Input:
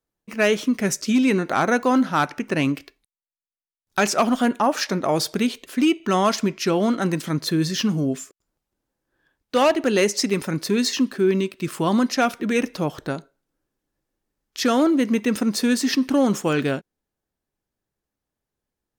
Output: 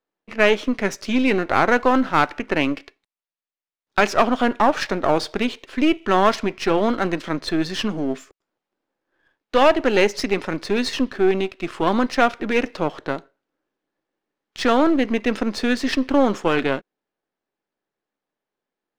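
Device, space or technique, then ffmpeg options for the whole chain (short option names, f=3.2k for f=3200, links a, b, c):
crystal radio: -af "highpass=290,lowpass=3.5k,aeval=exprs='if(lt(val(0),0),0.447*val(0),val(0))':c=same,volume=5.5dB"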